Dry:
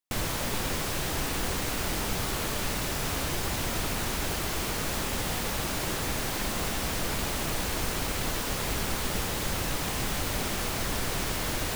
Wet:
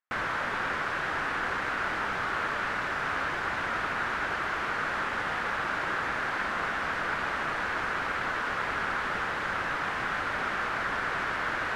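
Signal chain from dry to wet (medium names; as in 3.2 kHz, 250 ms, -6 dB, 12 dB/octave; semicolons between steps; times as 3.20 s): resonant low-pass 1.5 kHz, resonance Q 2.7; tilt EQ +3.5 dB/octave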